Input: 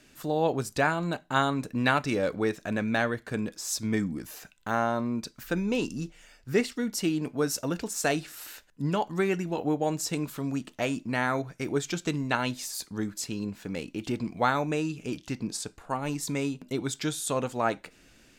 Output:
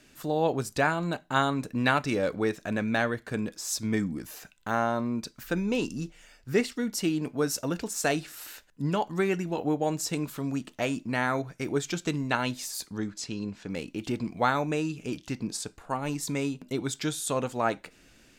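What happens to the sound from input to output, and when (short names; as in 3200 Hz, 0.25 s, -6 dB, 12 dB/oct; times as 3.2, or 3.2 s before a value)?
12.97–13.7 Chebyshev low-pass 5800 Hz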